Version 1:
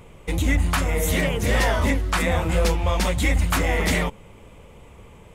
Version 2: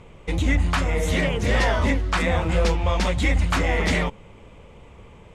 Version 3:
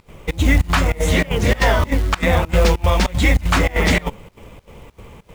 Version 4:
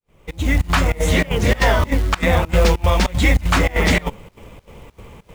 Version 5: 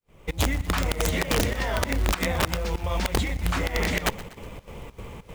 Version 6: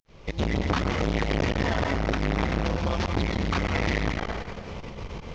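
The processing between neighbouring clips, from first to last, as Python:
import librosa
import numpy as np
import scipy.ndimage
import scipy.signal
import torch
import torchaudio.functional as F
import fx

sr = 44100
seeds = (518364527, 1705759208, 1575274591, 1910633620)

y1 = scipy.signal.sosfilt(scipy.signal.butter(2, 6100.0, 'lowpass', fs=sr, output='sos'), x)
y2 = fx.volume_shaper(y1, sr, bpm=98, per_beat=2, depth_db=-23, release_ms=82.0, shape='slow start')
y2 = fx.quant_companded(y2, sr, bits=6)
y2 = y2 * 10.0 ** (6.0 / 20.0)
y3 = fx.fade_in_head(y2, sr, length_s=0.74)
y4 = fx.over_compress(y3, sr, threshold_db=-20.0, ratio=-1.0)
y4 = (np.mod(10.0 ** (11.0 / 20.0) * y4 + 1.0, 2.0) - 1.0) / 10.0 ** (11.0 / 20.0)
y4 = fx.echo_feedback(y4, sr, ms=122, feedback_pct=54, wet_db=-18)
y4 = y4 * 10.0 ** (-4.0 / 20.0)
y5 = fx.cvsd(y4, sr, bps=32000)
y5 = fx.rev_plate(y5, sr, seeds[0], rt60_s=1.4, hf_ratio=0.75, predelay_ms=105, drr_db=2.5)
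y5 = fx.transformer_sat(y5, sr, knee_hz=500.0)
y5 = y5 * 10.0 ** (3.5 / 20.0)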